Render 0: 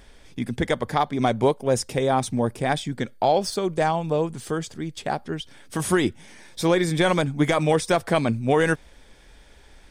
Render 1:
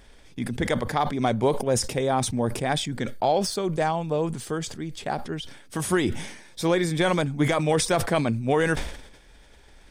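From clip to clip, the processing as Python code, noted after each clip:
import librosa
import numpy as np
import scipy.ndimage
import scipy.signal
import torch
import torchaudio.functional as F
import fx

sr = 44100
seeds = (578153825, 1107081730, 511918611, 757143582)

y = fx.sustainer(x, sr, db_per_s=71.0)
y = y * librosa.db_to_amplitude(-2.5)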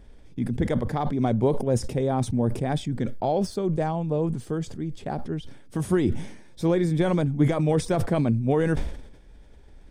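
y = fx.tilt_shelf(x, sr, db=7.5, hz=650.0)
y = y * librosa.db_to_amplitude(-3.0)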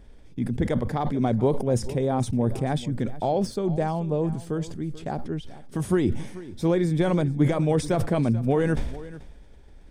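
y = x + 10.0 ** (-17.0 / 20.0) * np.pad(x, (int(436 * sr / 1000.0), 0))[:len(x)]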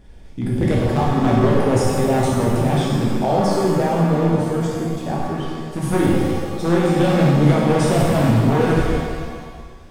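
y = np.minimum(x, 2.0 * 10.0 ** (-17.5 / 20.0) - x)
y = fx.rev_shimmer(y, sr, seeds[0], rt60_s=1.5, semitones=7, shimmer_db=-8, drr_db=-4.5)
y = y * librosa.db_to_amplitude(2.0)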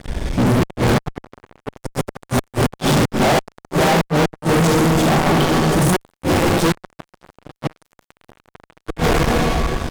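y = fx.gate_flip(x, sr, shuts_db=-8.0, range_db=-36)
y = fx.fuzz(y, sr, gain_db=37.0, gate_db=-44.0)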